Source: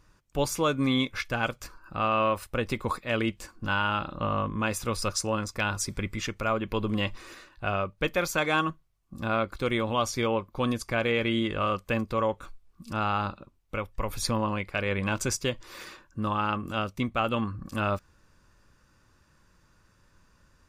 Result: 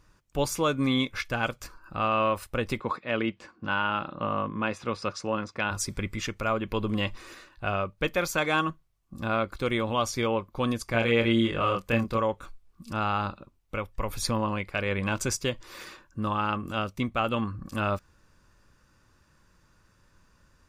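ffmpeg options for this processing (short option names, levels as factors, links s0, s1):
-filter_complex "[0:a]asplit=3[s0][s1][s2];[s0]afade=t=out:st=2.79:d=0.02[s3];[s1]highpass=140,lowpass=3400,afade=t=in:st=2.79:d=0.02,afade=t=out:st=5.7:d=0.02[s4];[s2]afade=t=in:st=5.7:d=0.02[s5];[s3][s4][s5]amix=inputs=3:normalize=0,asettb=1/sr,asplit=3[s6][s7][s8];[s6]atrim=end=10.914[s9];[s7]atrim=start=10.91:end=12.18,asetpts=PTS-STARTPTS,afade=t=in:d=0.004:c=qsin,afade=t=out:st=1.266:d=0.004:c=qsin,asplit=2[s10][s11];[s11]adelay=26,volume=0.708[s12];[s10][s12]amix=inputs=2:normalize=0,atrim=end_sample=56007[s13];[s8]atrim=start=12.176[s14];[s9][s13]acrossfade=d=0.004:c1=hsin:c2=qsin[s15];[s15][s14]acrossfade=d=0.004:c1=qsin:c2=hsin"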